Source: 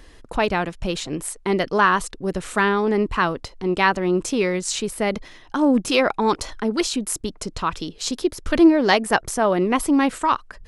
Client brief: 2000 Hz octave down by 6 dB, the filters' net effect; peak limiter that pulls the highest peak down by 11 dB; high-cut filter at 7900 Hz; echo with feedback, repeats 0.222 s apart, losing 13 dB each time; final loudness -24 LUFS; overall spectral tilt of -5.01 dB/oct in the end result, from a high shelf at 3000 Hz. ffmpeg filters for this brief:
-af "lowpass=7.9k,equalizer=f=2k:t=o:g=-5,highshelf=f=3k:g=-8,alimiter=limit=-15.5dB:level=0:latency=1,aecho=1:1:222|444|666:0.224|0.0493|0.0108,volume=2dB"

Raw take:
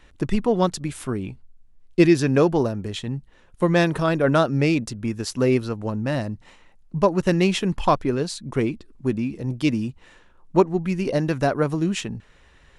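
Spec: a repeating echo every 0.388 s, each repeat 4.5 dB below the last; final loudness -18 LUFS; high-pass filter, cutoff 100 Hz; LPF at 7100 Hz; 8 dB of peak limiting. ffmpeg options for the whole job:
-af "highpass=100,lowpass=7.1k,alimiter=limit=-12.5dB:level=0:latency=1,aecho=1:1:388|776|1164|1552|1940|2328|2716|3104|3492:0.596|0.357|0.214|0.129|0.0772|0.0463|0.0278|0.0167|0.01,volume=5.5dB"

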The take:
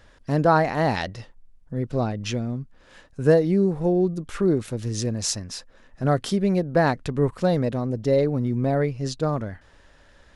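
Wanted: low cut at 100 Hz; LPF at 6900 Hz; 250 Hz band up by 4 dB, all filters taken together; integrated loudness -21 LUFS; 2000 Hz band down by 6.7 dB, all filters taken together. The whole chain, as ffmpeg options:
-af "highpass=100,lowpass=6.9k,equalizer=f=250:t=o:g=6,equalizer=f=2k:t=o:g=-9,volume=0.5dB"

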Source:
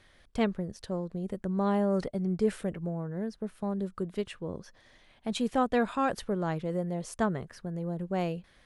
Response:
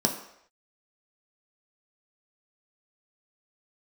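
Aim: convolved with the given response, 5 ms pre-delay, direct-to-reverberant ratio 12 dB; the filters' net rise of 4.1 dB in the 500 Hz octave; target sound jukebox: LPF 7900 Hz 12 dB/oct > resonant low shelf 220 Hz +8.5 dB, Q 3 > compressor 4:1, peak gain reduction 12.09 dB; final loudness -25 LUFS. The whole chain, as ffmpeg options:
-filter_complex "[0:a]equalizer=f=500:t=o:g=7.5,asplit=2[a][b];[1:a]atrim=start_sample=2205,adelay=5[c];[b][c]afir=irnorm=-1:irlink=0,volume=-22dB[d];[a][d]amix=inputs=2:normalize=0,lowpass=7.9k,lowshelf=f=220:t=q:w=3:g=8.5,acompressor=threshold=-27dB:ratio=4,volume=6dB"

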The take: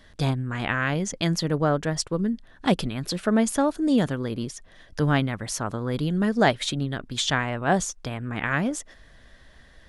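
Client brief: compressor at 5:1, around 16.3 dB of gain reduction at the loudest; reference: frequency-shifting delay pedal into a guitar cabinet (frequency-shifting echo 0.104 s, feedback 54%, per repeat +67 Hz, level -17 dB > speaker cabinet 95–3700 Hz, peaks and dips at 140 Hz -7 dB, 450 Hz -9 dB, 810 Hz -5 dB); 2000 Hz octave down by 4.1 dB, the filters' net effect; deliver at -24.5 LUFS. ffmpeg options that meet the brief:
-filter_complex "[0:a]equalizer=f=2k:t=o:g=-5,acompressor=threshold=-35dB:ratio=5,asplit=6[a][b][c][d][e][f];[b]adelay=104,afreqshift=67,volume=-17dB[g];[c]adelay=208,afreqshift=134,volume=-22.4dB[h];[d]adelay=312,afreqshift=201,volume=-27.7dB[i];[e]adelay=416,afreqshift=268,volume=-33.1dB[j];[f]adelay=520,afreqshift=335,volume=-38.4dB[k];[a][g][h][i][j][k]amix=inputs=6:normalize=0,highpass=95,equalizer=f=140:t=q:w=4:g=-7,equalizer=f=450:t=q:w=4:g=-9,equalizer=f=810:t=q:w=4:g=-5,lowpass=f=3.7k:w=0.5412,lowpass=f=3.7k:w=1.3066,volume=16.5dB"

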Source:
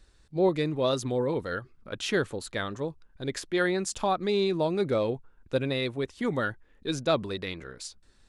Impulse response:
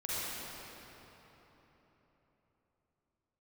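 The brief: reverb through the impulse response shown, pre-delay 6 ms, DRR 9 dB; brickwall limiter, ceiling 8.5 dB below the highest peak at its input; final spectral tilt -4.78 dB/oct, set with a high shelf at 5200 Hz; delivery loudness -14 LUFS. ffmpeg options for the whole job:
-filter_complex "[0:a]highshelf=f=5.2k:g=3.5,alimiter=limit=-20.5dB:level=0:latency=1,asplit=2[a][b];[1:a]atrim=start_sample=2205,adelay=6[c];[b][c]afir=irnorm=-1:irlink=0,volume=-14.5dB[d];[a][d]amix=inputs=2:normalize=0,volume=17dB"

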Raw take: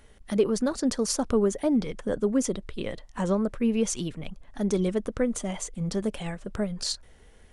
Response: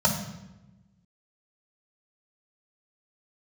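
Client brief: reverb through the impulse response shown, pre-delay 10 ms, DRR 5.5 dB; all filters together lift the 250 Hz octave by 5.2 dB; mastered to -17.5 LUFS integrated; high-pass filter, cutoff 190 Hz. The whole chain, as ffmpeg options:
-filter_complex "[0:a]highpass=190,equalizer=f=250:t=o:g=8,asplit=2[a][b];[1:a]atrim=start_sample=2205,adelay=10[c];[b][c]afir=irnorm=-1:irlink=0,volume=-19.5dB[d];[a][d]amix=inputs=2:normalize=0,volume=2dB"

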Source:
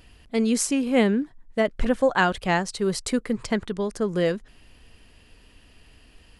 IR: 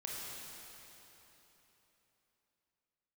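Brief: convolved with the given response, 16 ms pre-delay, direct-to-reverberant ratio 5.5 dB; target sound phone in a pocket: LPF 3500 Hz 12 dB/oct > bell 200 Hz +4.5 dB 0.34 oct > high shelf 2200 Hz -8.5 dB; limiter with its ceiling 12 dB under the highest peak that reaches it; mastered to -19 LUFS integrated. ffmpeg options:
-filter_complex "[0:a]alimiter=limit=-19dB:level=0:latency=1,asplit=2[a][b];[1:a]atrim=start_sample=2205,adelay=16[c];[b][c]afir=irnorm=-1:irlink=0,volume=-6dB[d];[a][d]amix=inputs=2:normalize=0,lowpass=3.5k,equalizer=f=200:t=o:w=0.34:g=4.5,highshelf=f=2.2k:g=-8.5,volume=9dB"

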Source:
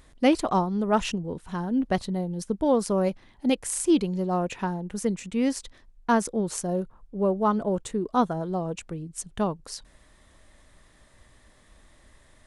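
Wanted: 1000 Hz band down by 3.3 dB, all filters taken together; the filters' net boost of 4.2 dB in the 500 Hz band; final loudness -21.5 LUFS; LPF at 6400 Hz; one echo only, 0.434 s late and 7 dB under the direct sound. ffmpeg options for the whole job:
-af "lowpass=6.4k,equalizer=f=500:t=o:g=7,equalizer=f=1k:t=o:g=-7.5,aecho=1:1:434:0.447,volume=3dB"

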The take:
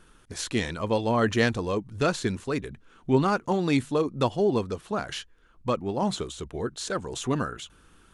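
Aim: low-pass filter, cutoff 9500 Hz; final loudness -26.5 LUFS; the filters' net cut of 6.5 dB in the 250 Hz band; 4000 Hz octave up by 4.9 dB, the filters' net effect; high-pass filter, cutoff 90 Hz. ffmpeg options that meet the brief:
-af "highpass=90,lowpass=9.5k,equalizer=f=250:t=o:g=-8.5,equalizer=f=4k:t=o:g=6,volume=3dB"

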